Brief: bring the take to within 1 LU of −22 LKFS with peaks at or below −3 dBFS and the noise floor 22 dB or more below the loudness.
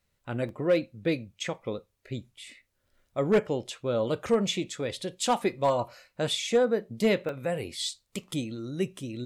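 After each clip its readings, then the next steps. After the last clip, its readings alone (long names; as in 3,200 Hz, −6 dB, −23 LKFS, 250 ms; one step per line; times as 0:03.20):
share of clipped samples 0.3%; peaks flattened at −16.0 dBFS; number of dropouts 2; longest dropout 1.4 ms; integrated loudness −29.5 LKFS; sample peak −16.0 dBFS; target loudness −22.0 LKFS
→ clipped peaks rebuilt −16 dBFS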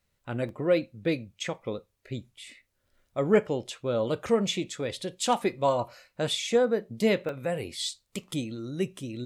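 share of clipped samples 0.0%; number of dropouts 2; longest dropout 1.4 ms
→ repair the gap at 0:00.49/0:07.29, 1.4 ms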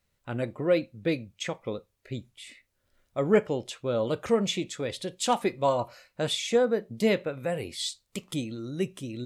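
number of dropouts 0; integrated loudness −29.0 LKFS; sample peak −10.5 dBFS; target loudness −22.0 LKFS
→ level +7 dB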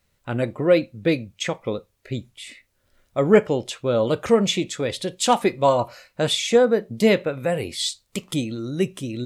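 integrated loudness −22.0 LKFS; sample peak −3.5 dBFS; background noise floor −69 dBFS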